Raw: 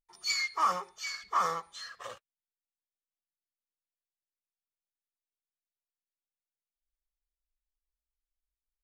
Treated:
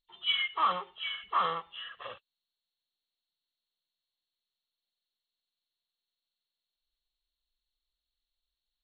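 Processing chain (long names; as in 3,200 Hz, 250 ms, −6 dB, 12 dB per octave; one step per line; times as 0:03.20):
hearing-aid frequency compression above 2,600 Hz 4 to 1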